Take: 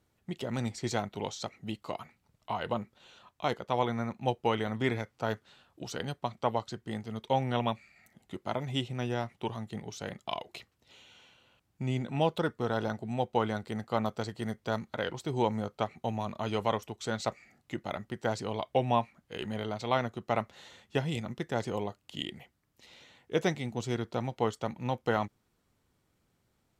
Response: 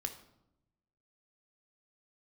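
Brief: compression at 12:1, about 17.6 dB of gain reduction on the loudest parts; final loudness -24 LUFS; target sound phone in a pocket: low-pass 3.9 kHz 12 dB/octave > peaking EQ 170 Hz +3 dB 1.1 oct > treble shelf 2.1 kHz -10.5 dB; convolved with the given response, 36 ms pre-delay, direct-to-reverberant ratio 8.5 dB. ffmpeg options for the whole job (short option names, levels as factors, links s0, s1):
-filter_complex "[0:a]acompressor=threshold=0.01:ratio=12,asplit=2[s0][s1];[1:a]atrim=start_sample=2205,adelay=36[s2];[s1][s2]afir=irnorm=-1:irlink=0,volume=0.398[s3];[s0][s3]amix=inputs=2:normalize=0,lowpass=3900,equalizer=f=170:t=o:w=1.1:g=3,highshelf=f=2100:g=-10.5,volume=12.6"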